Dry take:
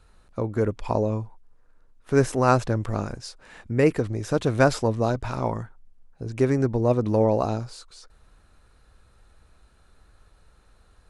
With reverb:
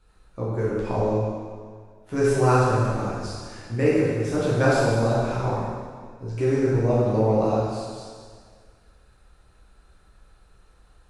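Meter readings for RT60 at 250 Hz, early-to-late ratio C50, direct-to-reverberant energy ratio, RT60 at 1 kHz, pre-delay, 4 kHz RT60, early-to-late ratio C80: 1.8 s, -2.5 dB, -8.5 dB, 1.8 s, 8 ms, 1.7 s, 0.0 dB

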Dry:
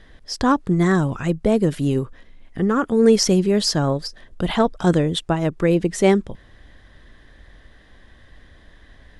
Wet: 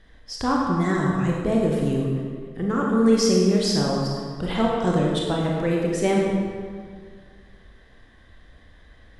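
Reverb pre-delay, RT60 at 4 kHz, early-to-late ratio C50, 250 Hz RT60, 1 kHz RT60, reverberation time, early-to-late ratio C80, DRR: 26 ms, 1.3 s, -0.5 dB, 2.1 s, 1.8 s, 1.9 s, 1.5 dB, -2.5 dB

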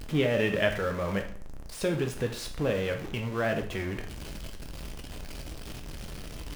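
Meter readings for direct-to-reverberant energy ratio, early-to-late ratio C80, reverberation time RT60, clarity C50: 4.0 dB, 14.0 dB, 0.50 s, 9.5 dB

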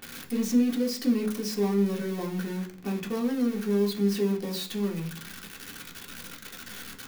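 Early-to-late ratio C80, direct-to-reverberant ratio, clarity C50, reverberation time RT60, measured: 17.5 dB, -1.5 dB, 12.5 dB, 0.45 s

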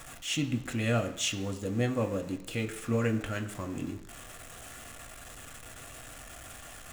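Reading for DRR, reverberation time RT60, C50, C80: 5.0 dB, 1.0 s, 13.0 dB, 15.0 dB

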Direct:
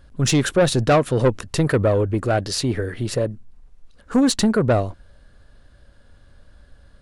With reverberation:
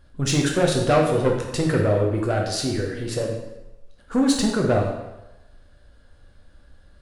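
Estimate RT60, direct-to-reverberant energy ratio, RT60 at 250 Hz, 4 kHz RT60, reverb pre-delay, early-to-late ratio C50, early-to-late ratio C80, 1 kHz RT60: 0.95 s, -0.5 dB, 0.85 s, 0.85 s, 6 ms, 4.0 dB, 6.5 dB, 1.0 s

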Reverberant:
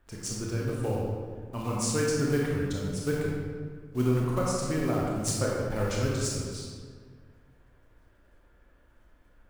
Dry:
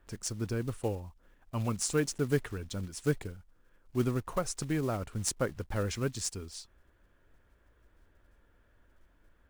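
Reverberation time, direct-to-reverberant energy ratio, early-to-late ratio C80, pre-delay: 1.8 s, -4.0 dB, 0.5 dB, 23 ms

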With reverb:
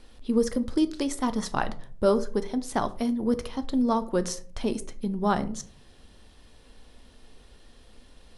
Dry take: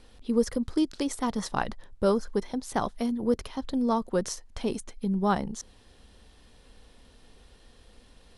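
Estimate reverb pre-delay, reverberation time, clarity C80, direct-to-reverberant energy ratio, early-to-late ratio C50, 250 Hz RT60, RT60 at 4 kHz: 3 ms, 0.50 s, 21.5 dB, 10.5 dB, 17.0 dB, 0.70 s, 0.25 s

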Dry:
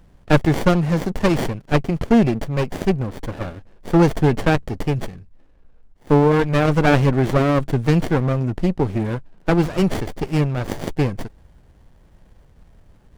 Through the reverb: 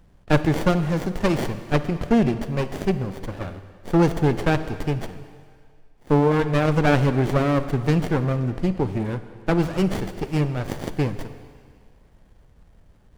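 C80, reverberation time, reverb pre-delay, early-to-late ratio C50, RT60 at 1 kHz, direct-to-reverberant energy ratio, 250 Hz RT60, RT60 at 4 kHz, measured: 12.5 dB, 2.0 s, 27 ms, 11.5 dB, 2.1 s, 11.0 dB, 1.8 s, 2.0 s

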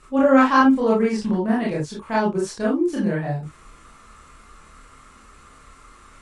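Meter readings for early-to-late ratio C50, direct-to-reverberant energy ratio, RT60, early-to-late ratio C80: 6.0 dB, -5.5 dB, no single decay rate, 14.5 dB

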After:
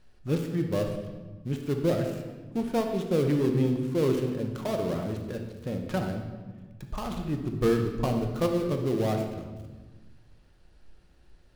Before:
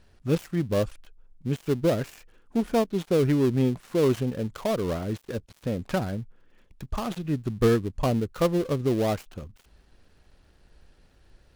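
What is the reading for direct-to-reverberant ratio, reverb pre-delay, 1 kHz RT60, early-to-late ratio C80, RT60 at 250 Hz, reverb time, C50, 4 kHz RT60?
3.0 dB, 6 ms, 1.3 s, 7.5 dB, 1.9 s, 1.3 s, 5.5 dB, 0.95 s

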